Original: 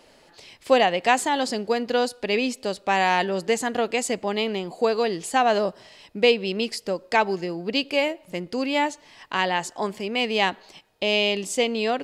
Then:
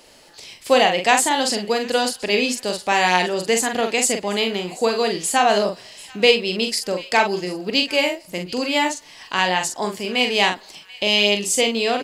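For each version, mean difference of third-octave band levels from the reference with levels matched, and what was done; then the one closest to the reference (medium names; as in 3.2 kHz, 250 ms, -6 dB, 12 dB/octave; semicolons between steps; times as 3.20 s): 4.5 dB: treble shelf 3.8 kHz +10 dB; doubling 44 ms -5.5 dB; on a send: feedback echo behind a high-pass 736 ms, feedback 35%, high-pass 1.6 kHz, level -19.5 dB; on the sum: trim +1.5 dB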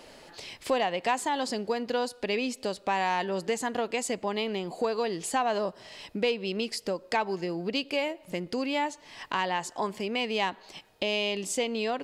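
2.5 dB: dynamic bell 1 kHz, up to +6 dB, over -41 dBFS, Q 5.4; in parallel at -5 dB: saturation -12.5 dBFS, distortion -17 dB; on the sum: compression 2:1, threshold -34 dBFS, peak gain reduction 13.5 dB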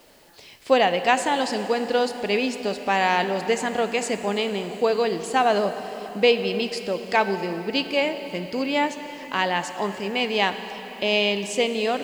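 5.5 dB: Bessel low-pass 8 kHz; word length cut 10-bit, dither triangular; plate-style reverb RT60 4.5 s, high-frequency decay 0.9×, DRR 9 dB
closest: second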